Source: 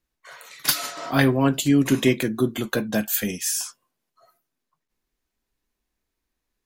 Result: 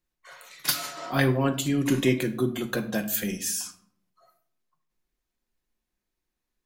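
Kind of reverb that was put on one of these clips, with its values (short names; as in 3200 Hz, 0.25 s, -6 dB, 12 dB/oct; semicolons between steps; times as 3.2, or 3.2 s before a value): shoebox room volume 1000 m³, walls furnished, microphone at 0.93 m; gain -4.5 dB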